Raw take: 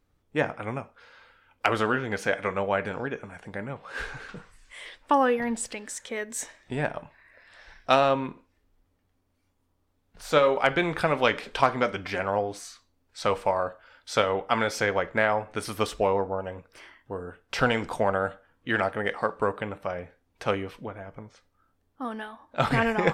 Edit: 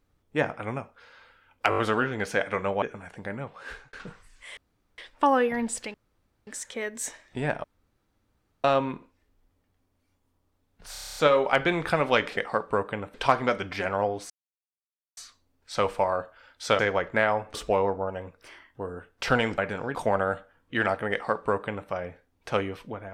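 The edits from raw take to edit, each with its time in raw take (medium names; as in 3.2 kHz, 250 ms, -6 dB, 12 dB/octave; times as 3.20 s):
1.70 s: stutter 0.02 s, 5 plays
2.74–3.11 s: move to 17.89 s
3.75–4.22 s: fade out
4.86 s: insert room tone 0.41 s
5.82 s: insert room tone 0.53 s
6.99–7.99 s: room tone
10.27 s: stutter 0.03 s, 9 plays
12.64 s: insert silence 0.87 s
14.26–14.80 s: delete
15.55–15.85 s: delete
19.06–19.83 s: copy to 11.48 s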